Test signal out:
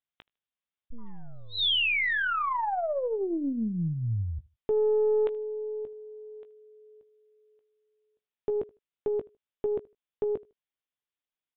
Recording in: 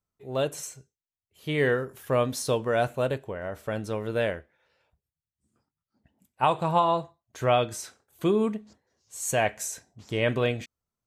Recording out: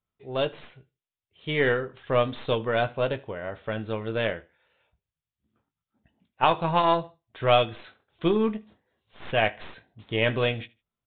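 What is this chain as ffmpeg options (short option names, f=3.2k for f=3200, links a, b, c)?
-filter_complex "[0:a]crystalizer=i=2.5:c=0,asplit=2[a][b];[b]adelay=18,volume=-11dB[c];[a][c]amix=inputs=2:normalize=0,aecho=1:1:77|154:0.0708|0.0156,aeval=exprs='0.473*(cos(1*acos(clip(val(0)/0.473,-1,1)))-cos(1*PI/2))+0.0668*(cos(3*acos(clip(val(0)/0.473,-1,1)))-cos(3*PI/2))+0.00668*(cos(4*acos(clip(val(0)/0.473,-1,1)))-cos(4*PI/2))+0.0168*(cos(6*acos(clip(val(0)/0.473,-1,1)))-cos(6*PI/2))':c=same,aresample=8000,aresample=44100,volume=4dB"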